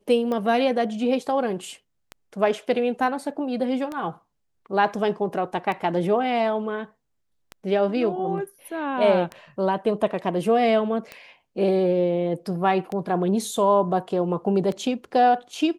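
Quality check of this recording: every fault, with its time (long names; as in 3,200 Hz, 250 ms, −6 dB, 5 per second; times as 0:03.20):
scratch tick 33 1/3 rpm −18 dBFS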